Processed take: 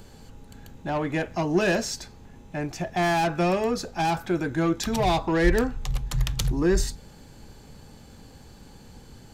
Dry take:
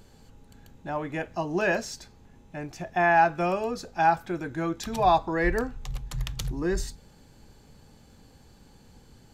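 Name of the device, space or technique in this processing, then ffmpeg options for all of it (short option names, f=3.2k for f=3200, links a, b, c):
one-band saturation: -filter_complex "[0:a]acrossover=split=430|3100[a][b][c];[b]asoftclip=type=tanh:threshold=-32dB[d];[a][d][c]amix=inputs=3:normalize=0,volume=6.5dB"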